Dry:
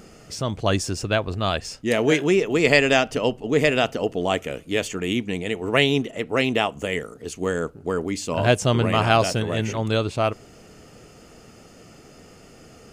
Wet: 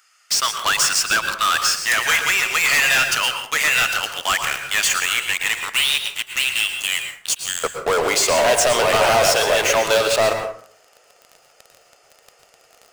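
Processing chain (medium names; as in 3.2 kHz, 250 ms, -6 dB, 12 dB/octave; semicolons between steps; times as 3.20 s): Chebyshev high-pass 1.3 kHz, order 3, from 5.69 s 2.8 kHz, from 7.63 s 590 Hz; waveshaping leveller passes 5; compression, threshold -15 dBFS, peak gain reduction 7.5 dB; saturation -20 dBFS, distortion -11 dB; plate-style reverb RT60 0.53 s, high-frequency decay 0.55×, pre-delay 100 ms, DRR 5.5 dB; trim +6 dB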